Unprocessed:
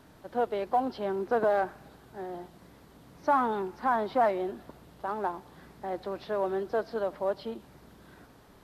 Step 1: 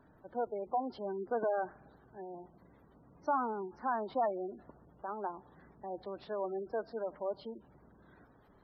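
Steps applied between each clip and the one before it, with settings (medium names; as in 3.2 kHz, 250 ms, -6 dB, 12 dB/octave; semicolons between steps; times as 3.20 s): spectral gate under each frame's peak -20 dB strong; trim -7 dB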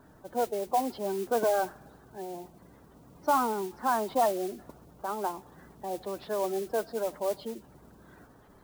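modulation noise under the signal 16 dB; trim +6.5 dB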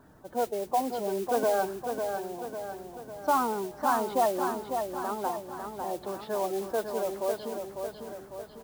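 feedback delay 550 ms, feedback 53%, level -6 dB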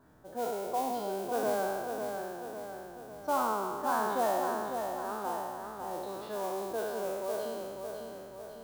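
spectral sustain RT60 1.89 s; trim -7.5 dB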